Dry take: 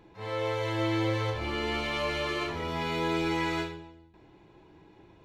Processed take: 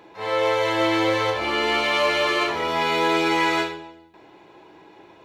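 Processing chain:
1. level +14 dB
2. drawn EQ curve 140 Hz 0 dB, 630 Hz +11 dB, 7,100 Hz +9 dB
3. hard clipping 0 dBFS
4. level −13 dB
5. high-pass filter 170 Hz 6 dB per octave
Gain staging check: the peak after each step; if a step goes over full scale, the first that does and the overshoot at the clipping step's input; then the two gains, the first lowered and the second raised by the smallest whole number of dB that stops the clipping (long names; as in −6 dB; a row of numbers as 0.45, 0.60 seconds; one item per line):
−4.0, +4.5, 0.0, −13.0, −11.0 dBFS
step 2, 4.5 dB
step 1 +9 dB, step 4 −8 dB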